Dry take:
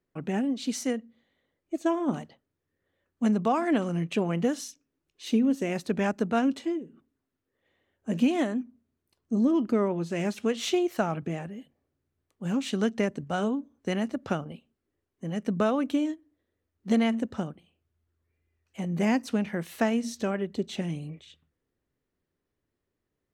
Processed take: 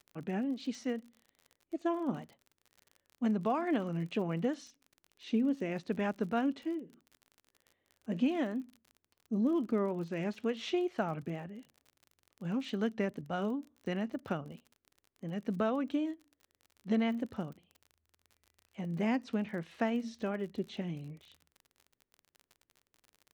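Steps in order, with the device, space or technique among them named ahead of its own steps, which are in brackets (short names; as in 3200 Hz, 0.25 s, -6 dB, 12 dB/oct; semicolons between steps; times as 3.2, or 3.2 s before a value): lo-fi chain (LPF 4000 Hz 12 dB/oct; wow and flutter; crackle 46/s -38 dBFS); gain -6.5 dB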